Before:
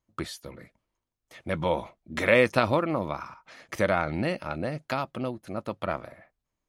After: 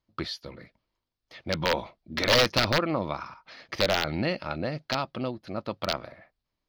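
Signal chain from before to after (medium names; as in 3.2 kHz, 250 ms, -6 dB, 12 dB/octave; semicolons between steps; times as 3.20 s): integer overflow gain 14.5 dB; resonant high shelf 6.2 kHz -10.5 dB, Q 3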